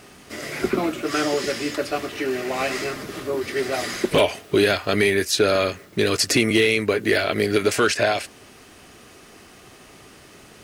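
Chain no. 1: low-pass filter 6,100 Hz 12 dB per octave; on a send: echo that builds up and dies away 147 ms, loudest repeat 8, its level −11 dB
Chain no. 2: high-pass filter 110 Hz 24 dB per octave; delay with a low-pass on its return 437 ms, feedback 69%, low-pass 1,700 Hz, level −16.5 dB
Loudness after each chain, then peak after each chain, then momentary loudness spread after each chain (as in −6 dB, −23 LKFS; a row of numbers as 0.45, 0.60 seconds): −20.0, −21.5 LKFS; −4.0, −6.0 dBFS; 7, 18 LU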